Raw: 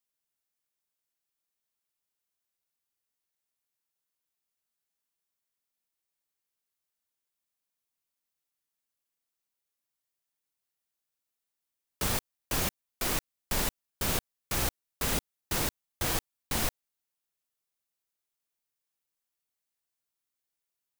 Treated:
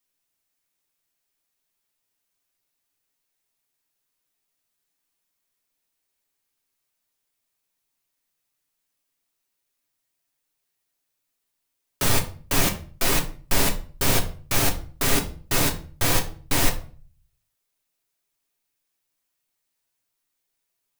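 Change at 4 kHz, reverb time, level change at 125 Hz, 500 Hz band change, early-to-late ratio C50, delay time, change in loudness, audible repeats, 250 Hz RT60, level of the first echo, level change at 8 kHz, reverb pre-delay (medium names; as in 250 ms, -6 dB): +8.5 dB, 0.40 s, +9.5 dB, +9.0 dB, 13.0 dB, no echo, +8.5 dB, no echo, 0.55 s, no echo, +8.0 dB, 3 ms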